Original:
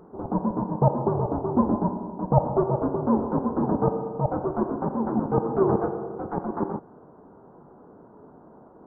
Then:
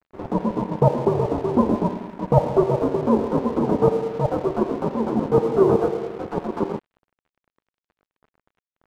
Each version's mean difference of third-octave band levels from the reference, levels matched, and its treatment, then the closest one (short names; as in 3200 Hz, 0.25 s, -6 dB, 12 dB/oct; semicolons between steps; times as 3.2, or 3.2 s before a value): 8.0 dB: notch 810 Hz, Q 16; dynamic EQ 460 Hz, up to +6 dB, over -38 dBFS, Q 2.5; crossover distortion -42 dBFS; gain +2.5 dB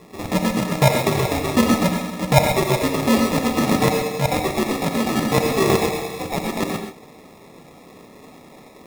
15.0 dB: bell 370 Hz -4 dB 0.29 oct; sample-and-hold 29×; non-linear reverb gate 0.15 s rising, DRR 3.5 dB; gain +4.5 dB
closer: first